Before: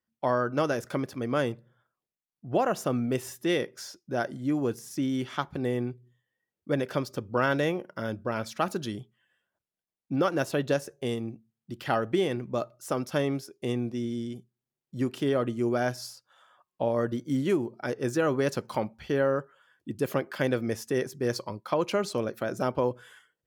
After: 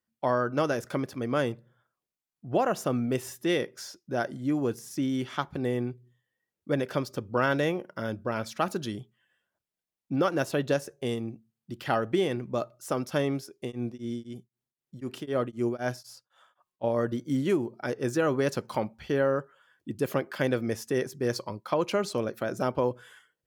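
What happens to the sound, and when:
13.6–16.84 beating tremolo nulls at 3.9 Hz

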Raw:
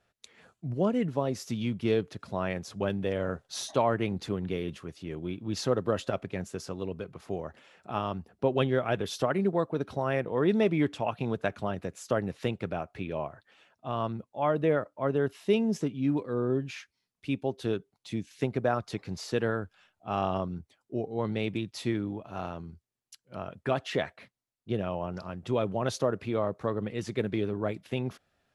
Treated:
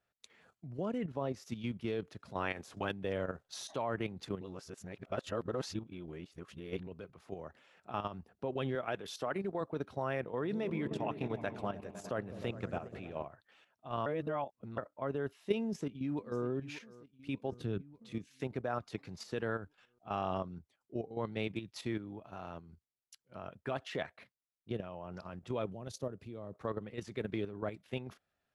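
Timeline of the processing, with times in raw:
0.98–1.45 high shelf 4900 Hz -7.5 dB
2.35–2.91 spectral limiter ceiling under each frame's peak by 13 dB
4.41–6.87 reverse
8.75–9.61 HPF 210 Hz 6 dB/oct
10.3–13.25 repeats that get brighter 0.102 s, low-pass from 200 Hz, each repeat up 1 oct, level -6 dB
14.06–14.78 reverse
15.64–16.44 echo throw 0.59 s, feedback 60%, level -16 dB
17.52–18.12 tone controls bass +12 dB, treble -3 dB
25.7–26.53 bell 1400 Hz -12.5 dB 2.8 oct
whole clip: bell 1400 Hz +2.5 dB 2.5 oct; level quantiser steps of 10 dB; gain -5 dB

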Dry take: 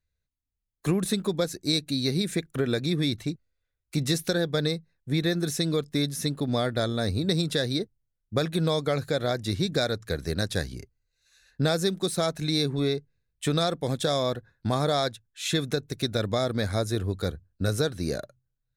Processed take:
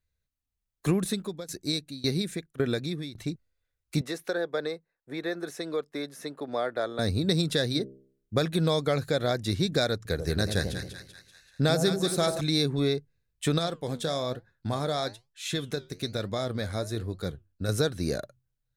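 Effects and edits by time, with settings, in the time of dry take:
0.93–3.32 tremolo saw down 1.8 Hz, depth 90%
4.01–6.99 three-band isolator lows -22 dB, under 350 Hz, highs -13 dB, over 2100 Hz
7.7–8.34 de-hum 66.45 Hz, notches 9
9.96–12.41 split-band echo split 930 Hz, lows 89 ms, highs 0.193 s, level -7 dB
13.58–17.69 flange 1.1 Hz, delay 4.6 ms, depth 8.7 ms, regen +77%

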